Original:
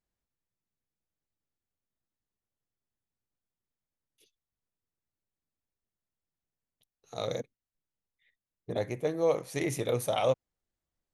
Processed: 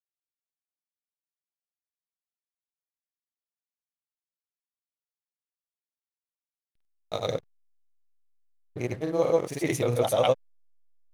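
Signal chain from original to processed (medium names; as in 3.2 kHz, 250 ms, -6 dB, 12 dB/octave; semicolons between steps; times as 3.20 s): granulator 100 ms, grains 20 per s, pitch spread up and down by 0 st; hysteresis with a dead band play -48.5 dBFS; trim +6 dB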